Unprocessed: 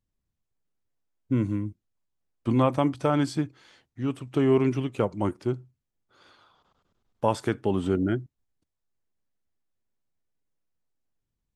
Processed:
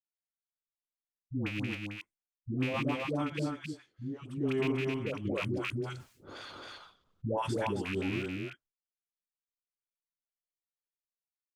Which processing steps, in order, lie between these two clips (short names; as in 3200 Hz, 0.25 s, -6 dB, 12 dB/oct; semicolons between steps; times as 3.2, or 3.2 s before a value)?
rattling part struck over -25 dBFS, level -14 dBFS; expander -47 dBFS; dispersion highs, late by 0.148 s, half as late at 540 Hz; rotary speaker horn 6.7 Hz, later 0.65 Hz, at 3.27; echo 0.268 s -3.5 dB; 5.25–7.74 fast leveller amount 70%; gain -8.5 dB